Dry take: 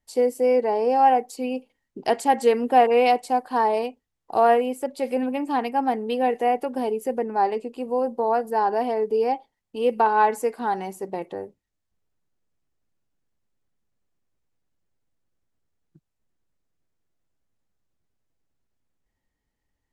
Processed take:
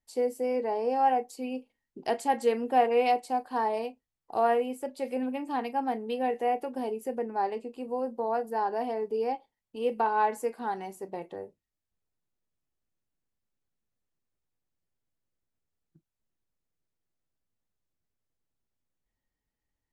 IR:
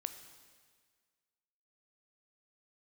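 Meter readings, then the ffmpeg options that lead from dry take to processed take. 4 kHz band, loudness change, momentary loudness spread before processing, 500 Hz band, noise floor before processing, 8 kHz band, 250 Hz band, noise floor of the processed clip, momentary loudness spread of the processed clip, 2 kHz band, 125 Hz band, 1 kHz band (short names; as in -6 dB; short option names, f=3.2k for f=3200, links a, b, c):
-7.0 dB, -7.0 dB, 12 LU, -7.5 dB, -80 dBFS, -7.0 dB, -6.5 dB, under -85 dBFS, 13 LU, -7.0 dB, n/a, -7.0 dB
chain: -filter_complex "[1:a]atrim=start_sample=2205,atrim=end_sample=3528,asetrate=79380,aresample=44100[a];[0:a][a]afir=irnorm=-1:irlink=0"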